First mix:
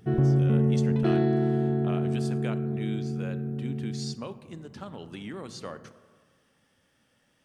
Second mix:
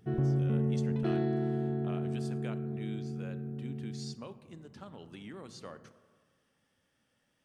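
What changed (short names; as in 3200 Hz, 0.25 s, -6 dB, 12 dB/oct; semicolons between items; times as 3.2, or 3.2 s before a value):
speech -7.5 dB; background -7.0 dB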